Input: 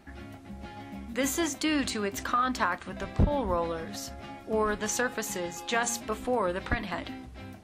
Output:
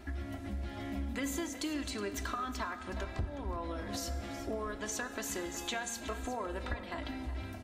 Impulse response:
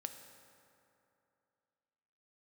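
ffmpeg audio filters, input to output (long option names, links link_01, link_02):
-filter_complex "[0:a]equalizer=frequency=66:width_type=o:width=0.87:gain=9.5,aecho=1:1:3:0.58,acompressor=threshold=-38dB:ratio=6,aecho=1:1:368:0.224,asplit=2[link_01][link_02];[1:a]atrim=start_sample=2205[link_03];[link_02][link_03]afir=irnorm=-1:irlink=0,volume=7.5dB[link_04];[link_01][link_04]amix=inputs=2:normalize=0,volume=-6dB"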